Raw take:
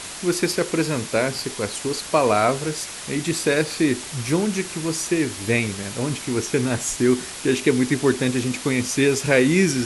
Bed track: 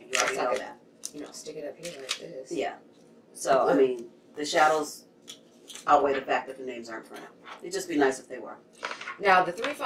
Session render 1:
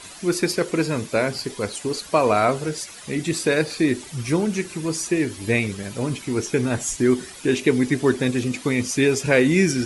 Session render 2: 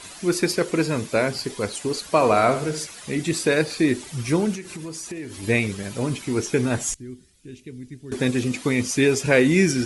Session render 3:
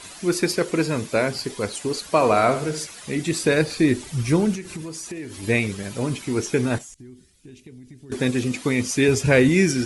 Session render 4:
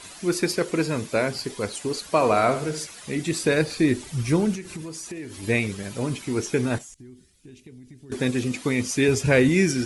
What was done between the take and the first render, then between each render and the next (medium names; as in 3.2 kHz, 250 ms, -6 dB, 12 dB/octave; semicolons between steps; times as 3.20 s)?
noise reduction 11 dB, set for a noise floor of -35 dBFS
2.10–2.87 s: flutter echo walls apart 12 m, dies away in 0.42 s; 4.55–5.43 s: compression 5:1, threshold -31 dBFS; 6.94–8.12 s: amplifier tone stack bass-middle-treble 10-0-1
3.43–4.82 s: bass shelf 130 Hz +9 dB; 6.78–8.10 s: compression 16:1, threshold -38 dBFS; 9.08–9.49 s: peaking EQ 79 Hz +14 dB 1.3 oct
trim -2 dB